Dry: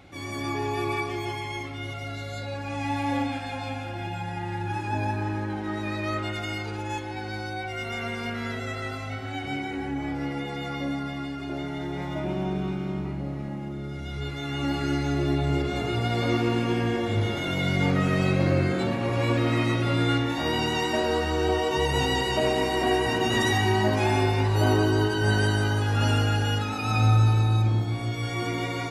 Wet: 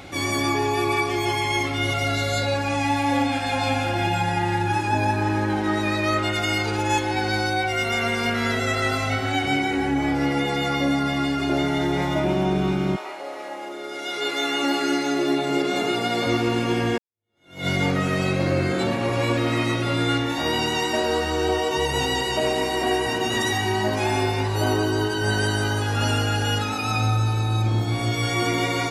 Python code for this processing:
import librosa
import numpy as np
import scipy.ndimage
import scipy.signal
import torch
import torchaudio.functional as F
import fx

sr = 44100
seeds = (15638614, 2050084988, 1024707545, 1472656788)

y = fx.highpass(x, sr, hz=fx.line((12.95, 560.0), (16.25, 150.0)), slope=24, at=(12.95, 16.25), fade=0.02)
y = fx.edit(y, sr, fx.fade_in_span(start_s=16.98, length_s=0.69, curve='exp'), tone=tone)
y = fx.bass_treble(y, sr, bass_db=-4, treble_db=4)
y = fx.rider(y, sr, range_db=10, speed_s=0.5)
y = F.gain(torch.from_numpy(y), 5.0).numpy()